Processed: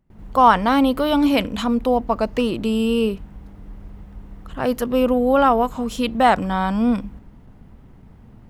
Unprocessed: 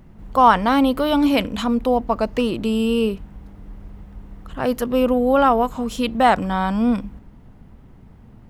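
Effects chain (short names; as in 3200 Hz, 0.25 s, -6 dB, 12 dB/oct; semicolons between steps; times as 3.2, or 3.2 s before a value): gate with hold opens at -37 dBFS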